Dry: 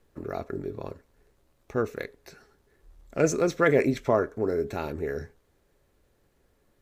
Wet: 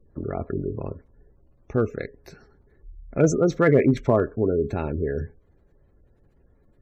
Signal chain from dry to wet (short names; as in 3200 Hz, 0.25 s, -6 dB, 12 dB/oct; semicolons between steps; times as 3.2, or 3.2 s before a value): spectral gate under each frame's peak -25 dB strong; low shelf 310 Hz +11 dB; in parallel at -6 dB: one-sided clip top -12 dBFS, bottom -9 dBFS; on the sum: gain -3.5 dB